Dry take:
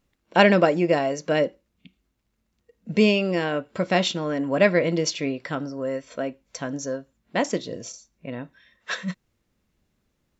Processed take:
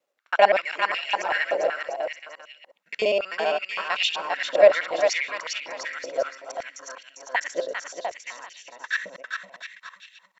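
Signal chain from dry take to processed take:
reversed piece by piece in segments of 65 ms
bouncing-ball delay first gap 400 ms, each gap 0.75×, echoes 5
high-pass on a step sequencer 5.3 Hz 570–2,700 Hz
level −5 dB

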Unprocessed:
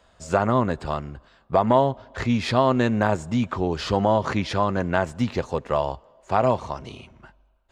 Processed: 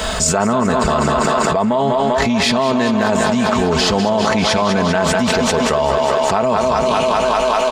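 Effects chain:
high-shelf EQ 3,800 Hz +9 dB
comb filter 4.6 ms, depth 58%
feedback echo with a high-pass in the loop 197 ms, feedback 74%, high-pass 210 Hz, level −7 dB
envelope flattener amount 100%
level −5 dB

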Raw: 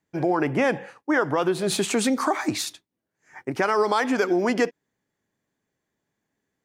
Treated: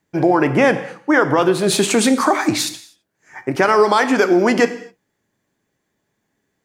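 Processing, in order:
reverb whose tail is shaped and stops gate 280 ms falling, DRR 10 dB
level +7.5 dB

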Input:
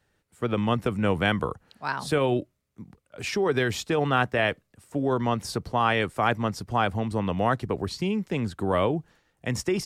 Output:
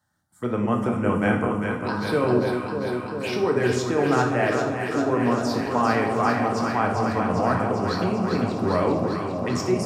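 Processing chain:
high-pass filter 110 Hz
phaser swept by the level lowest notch 430 Hz, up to 3,600 Hz, full sweep at −23.5 dBFS
delay that swaps between a low-pass and a high-pass 199 ms, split 880 Hz, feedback 87%, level −4 dB
convolution reverb, pre-delay 3 ms, DRR 2 dB

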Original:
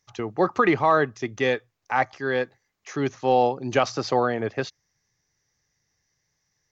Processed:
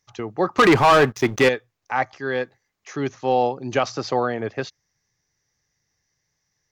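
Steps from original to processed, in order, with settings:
0:00.58–0:01.49: leveller curve on the samples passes 3

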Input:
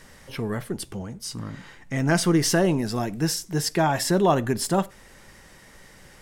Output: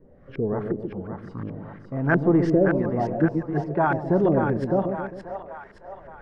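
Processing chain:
rotating-speaker cabinet horn 1.2 Hz
auto-filter low-pass saw up 2.8 Hz 360–1,700 Hz
echo with a time of its own for lows and highs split 630 Hz, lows 133 ms, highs 570 ms, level −5.5 dB

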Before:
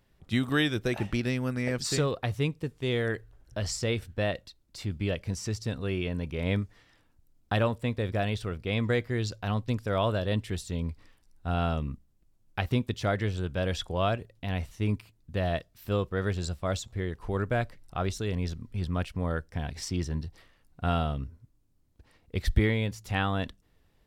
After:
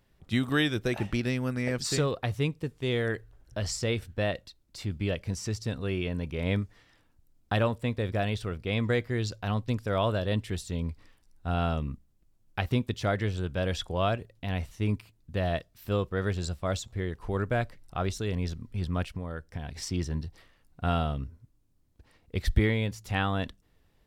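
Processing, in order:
0:19.04–0:19.75: downward compressor 5 to 1, threshold −32 dBFS, peak gain reduction 7.5 dB

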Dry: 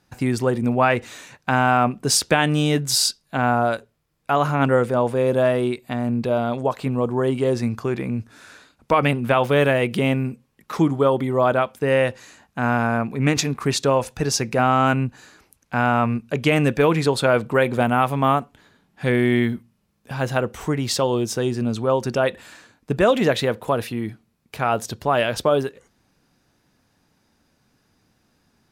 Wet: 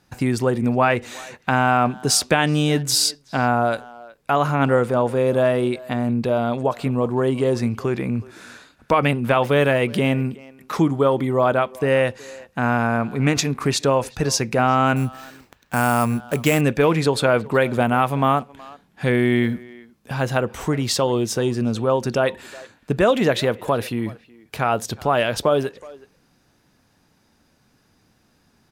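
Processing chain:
in parallel at −3 dB: downward compressor, threshold −25 dBFS, peak gain reduction 12 dB
0:14.96–0:16.61: on the sum: sample-rate reduction 10,000 Hz, jitter 0%
far-end echo of a speakerphone 370 ms, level −20 dB
level −1.5 dB

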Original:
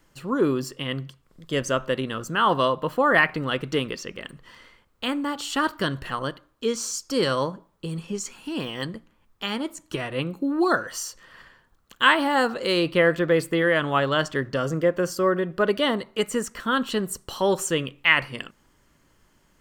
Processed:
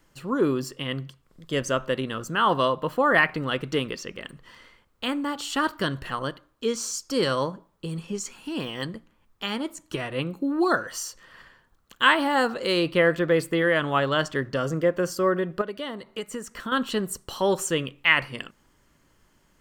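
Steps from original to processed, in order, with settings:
0:15.61–0:16.72: downward compressor 6 to 1, threshold −29 dBFS, peak gain reduction 12 dB
level −1 dB

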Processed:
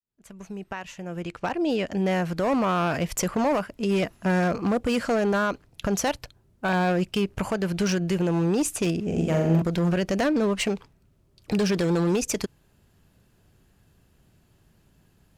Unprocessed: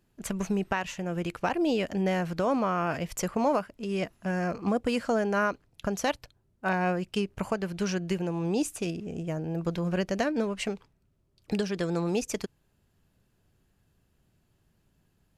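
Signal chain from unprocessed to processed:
fade in at the beginning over 3.76 s
0:01.22–0:01.92: low-pass filter 7,800 Hz 12 dB per octave
0:11.59–0:12.16: leveller curve on the samples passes 1
brickwall limiter −22.5 dBFS, peak gain reduction 6.5 dB
asymmetric clip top −29 dBFS, bottom −25.5 dBFS
0:09.04–0:09.62: flutter between parallel walls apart 7.4 metres, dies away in 0.82 s
level +8.5 dB

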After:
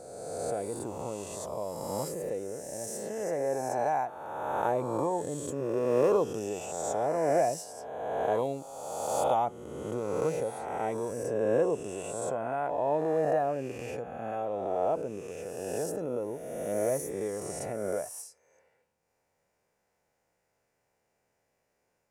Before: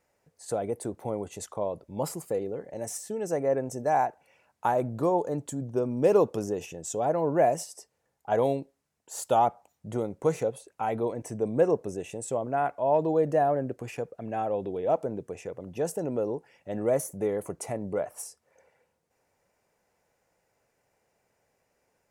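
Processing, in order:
peak hold with a rise ahead of every peak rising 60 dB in 1.82 s
level −7 dB

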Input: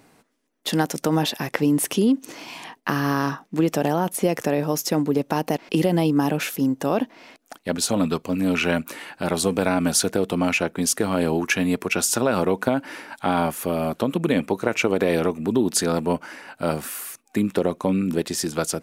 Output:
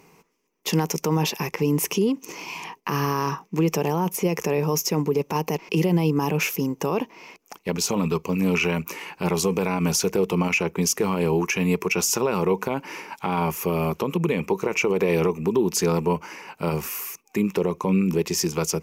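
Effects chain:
EQ curve with evenly spaced ripples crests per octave 0.78, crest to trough 11 dB
brickwall limiter −12.5 dBFS, peak gain reduction 10 dB

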